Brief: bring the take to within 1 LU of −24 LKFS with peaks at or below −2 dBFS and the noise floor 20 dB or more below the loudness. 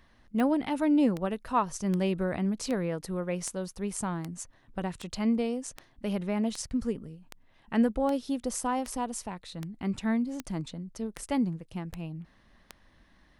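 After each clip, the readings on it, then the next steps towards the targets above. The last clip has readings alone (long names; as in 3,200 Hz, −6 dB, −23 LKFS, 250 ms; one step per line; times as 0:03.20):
number of clicks 17; integrated loudness −31.0 LKFS; sample peak −14.5 dBFS; target loudness −24.0 LKFS
→ click removal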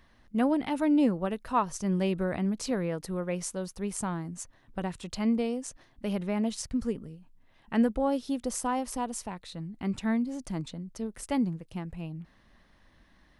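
number of clicks 0; integrated loudness −31.0 LKFS; sample peak −14.5 dBFS; target loudness −24.0 LKFS
→ level +7 dB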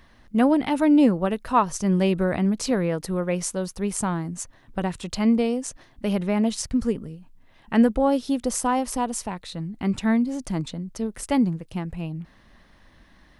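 integrated loudness −24.0 LKFS; sample peak −7.5 dBFS; background noise floor −55 dBFS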